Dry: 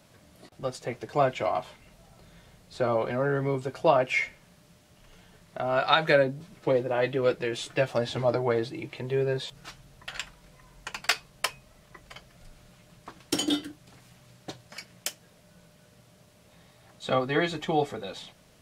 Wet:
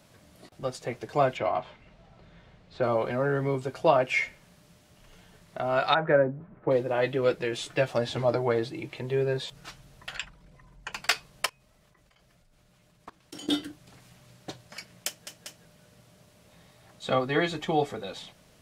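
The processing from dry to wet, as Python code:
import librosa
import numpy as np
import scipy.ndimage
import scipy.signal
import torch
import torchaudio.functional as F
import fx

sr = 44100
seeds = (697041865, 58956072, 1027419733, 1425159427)

y = fx.lowpass(x, sr, hz=3400.0, slope=12, at=(1.37, 2.83))
y = fx.lowpass(y, sr, hz=1600.0, slope=24, at=(5.93, 6.7), fade=0.02)
y = fx.envelope_sharpen(y, sr, power=1.5, at=(10.16, 10.93))
y = fx.level_steps(y, sr, step_db=21, at=(11.46, 13.49))
y = fx.edit(y, sr, fx.stutter_over(start_s=15.08, slice_s=0.19, count=3), tone=tone)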